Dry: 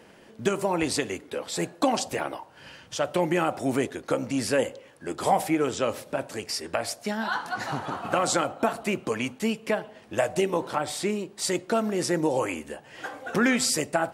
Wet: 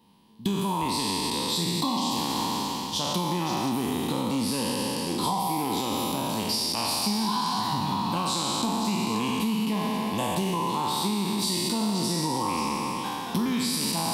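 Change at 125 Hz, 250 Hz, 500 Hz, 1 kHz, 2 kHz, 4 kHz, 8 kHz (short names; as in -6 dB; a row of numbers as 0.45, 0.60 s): +4.5, +2.5, -7.0, +2.5, -6.5, +7.0, +1.5 dB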